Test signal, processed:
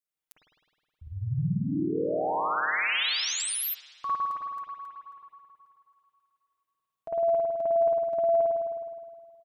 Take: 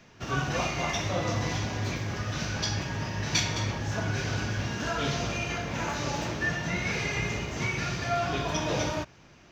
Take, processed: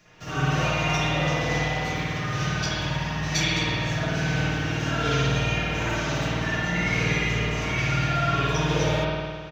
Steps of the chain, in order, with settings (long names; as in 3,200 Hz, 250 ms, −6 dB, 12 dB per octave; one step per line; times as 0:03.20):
high-shelf EQ 4,700 Hz +8.5 dB
comb filter 6.5 ms, depth 52%
spring reverb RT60 1.8 s, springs 52 ms, chirp 80 ms, DRR −9.5 dB
level −6 dB